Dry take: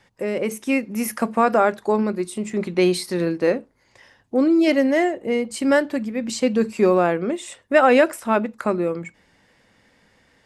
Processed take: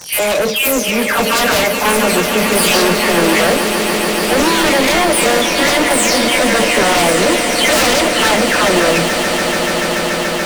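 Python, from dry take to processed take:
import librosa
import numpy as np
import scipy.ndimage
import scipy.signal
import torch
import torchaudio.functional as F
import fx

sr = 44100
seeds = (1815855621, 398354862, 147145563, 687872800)

p1 = fx.spec_delay(x, sr, highs='early', ms=388)
p2 = fx.low_shelf(p1, sr, hz=250.0, db=-12.0)
p3 = p2 + 0.38 * np.pad(p2, (int(6.8 * sr / 1000.0), 0))[:len(p2)]
p4 = fx.fold_sine(p3, sr, drive_db=19, ceiling_db=-4.5)
p5 = p3 + F.gain(torch.from_numpy(p4), -7.5).numpy()
p6 = fx.dmg_crackle(p5, sr, seeds[0], per_s=230.0, level_db=-23.0)
p7 = np.clip(p6, -10.0 ** (-16.5 / 20.0), 10.0 ** (-16.5 / 20.0))
p8 = p7 + fx.echo_swell(p7, sr, ms=144, loudest=8, wet_db=-12, dry=0)
p9 = fx.formant_shift(p8, sr, semitones=2)
y = F.gain(torch.from_numpy(p9), 4.0).numpy()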